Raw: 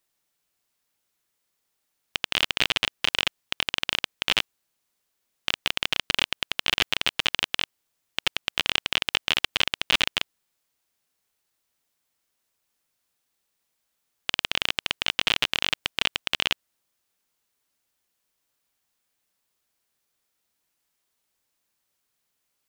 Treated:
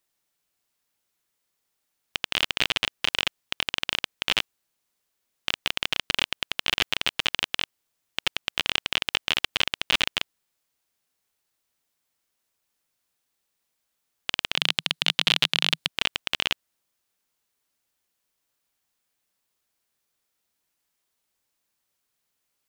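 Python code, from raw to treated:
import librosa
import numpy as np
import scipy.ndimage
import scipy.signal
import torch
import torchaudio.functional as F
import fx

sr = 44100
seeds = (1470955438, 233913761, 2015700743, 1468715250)

y = fx.graphic_eq_15(x, sr, hz=(160, 4000, 10000), db=(11, 7, 4), at=(14.57, 15.88))
y = F.gain(torch.from_numpy(y), -1.0).numpy()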